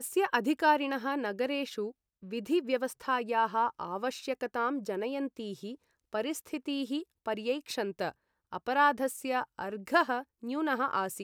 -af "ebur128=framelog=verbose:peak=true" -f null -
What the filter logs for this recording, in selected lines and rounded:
Integrated loudness:
  I:         -32.0 LUFS
  Threshold: -42.2 LUFS
Loudness range:
  LRA:         4.9 LU
  Threshold: -53.0 LUFS
  LRA low:   -36.0 LUFS
  LRA high:  -31.1 LUFS
True peak:
  Peak:      -12.7 dBFS